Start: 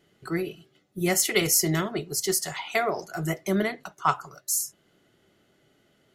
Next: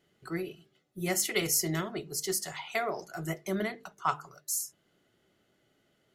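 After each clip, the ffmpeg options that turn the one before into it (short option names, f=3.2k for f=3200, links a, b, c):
-af "bandreject=f=50:t=h:w=6,bandreject=f=100:t=h:w=6,bandreject=f=150:t=h:w=6,bandreject=f=200:t=h:w=6,bandreject=f=250:t=h:w=6,bandreject=f=300:t=h:w=6,bandreject=f=350:t=h:w=6,bandreject=f=400:t=h:w=6,bandreject=f=450:t=h:w=6,volume=-6dB"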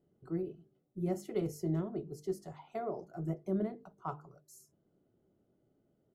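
-af "firequalizer=gain_entry='entry(270,0);entry(1900,-24);entry(13000,-27)':delay=0.05:min_phase=1"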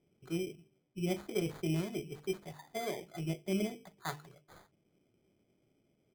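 -af "acrusher=samples=16:mix=1:aa=0.000001"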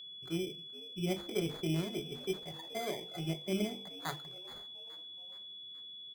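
-filter_complex "[0:a]aeval=exprs='val(0)+0.00501*sin(2*PI*3400*n/s)':c=same,bandreject=f=49.54:t=h:w=4,bandreject=f=99.08:t=h:w=4,bandreject=f=148.62:t=h:w=4,bandreject=f=198.16:t=h:w=4,bandreject=f=247.7:t=h:w=4,bandreject=f=297.24:t=h:w=4,bandreject=f=346.78:t=h:w=4,bandreject=f=396.32:t=h:w=4,bandreject=f=445.86:t=h:w=4,bandreject=f=495.4:t=h:w=4,asplit=5[a][b][c][d][e];[b]adelay=423,afreqshift=84,volume=-20dB[f];[c]adelay=846,afreqshift=168,volume=-25dB[g];[d]adelay=1269,afreqshift=252,volume=-30.1dB[h];[e]adelay=1692,afreqshift=336,volume=-35.1dB[i];[a][f][g][h][i]amix=inputs=5:normalize=0"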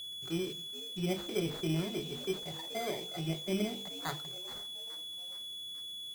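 -af "aeval=exprs='val(0)+0.5*0.00631*sgn(val(0))':c=same"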